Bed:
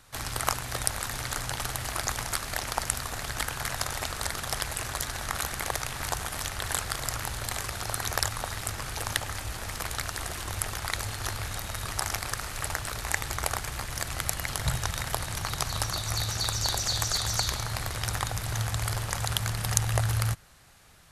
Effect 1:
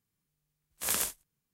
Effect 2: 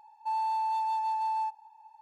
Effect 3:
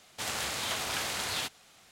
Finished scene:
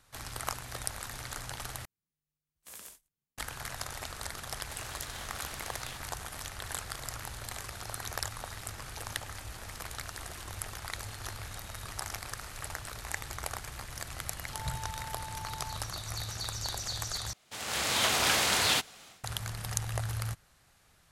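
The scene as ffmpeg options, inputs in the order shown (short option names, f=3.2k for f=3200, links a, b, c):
-filter_complex "[3:a]asplit=2[a][b];[0:a]volume=-8dB[c];[1:a]acompressor=threshold=-44dB:ratio=2:attack=61:release=91:knee=1:detection=rms[d];[b]dynaudnorm=f=290:g=3:m=15.5dB[e];[c]asplit=3[f][g][h];[f]atrim=end=1.854[i];[d]atrim=end=1.53,asetpts=PTS-STARTPTS,volume=-10.5dB[j];[g]atrim=start=3.376:end=17.334[k];[e]atrim=end=1.91,asetpts=PTS-STARTPTS,volume=-8dB[l];[h]atrim=start=19.236[m];[a]atrim=end=1.91,asetpts=PTS-STARTPTS,volume=-13.5dB,afade=t=in:d=0.004:c=hsin,afade=t=out:st=1.906:d=0.004:c=hsin,adelay=4500[n];[2:a]atrim=end=2.01,asetpts=PTS-STARTPTS,volume=-14.5dB,afade=t=in:d=0.004:c=hsin,afade=t=out:st=2.006:d=0.004:c=hsin,adelay=14270[o];[i][j]acrossfade=d=0.004:c1=hsin:c2=hsin[p];[p][k]acrossfade=d=0.004:c1=hsin:c2=hsin[q];[q][l]acrossfade=d=0.004:c1=hsin:c2=hsin[r];[r][m]acrossfade=d=0.004:c1=hsin:c2=hsin[s];[s][n][o]amix=inputs=3:normalize=0"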